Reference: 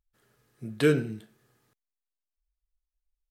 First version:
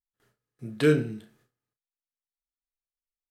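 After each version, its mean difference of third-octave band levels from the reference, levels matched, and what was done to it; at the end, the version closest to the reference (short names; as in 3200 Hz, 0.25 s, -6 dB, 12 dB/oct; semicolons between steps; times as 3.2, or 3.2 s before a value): 1.5 dB: gate with hold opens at -55 dBFS; high shelf 9300 Hz -4.5 dB; doubler 33 ms -8.5 dB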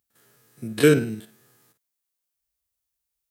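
3.0 dB: stepped spectrum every 50 ms; HPF 120 Hz 12 dB/oct; high shelf 6100 Hz +11 dB; gain +7 dB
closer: first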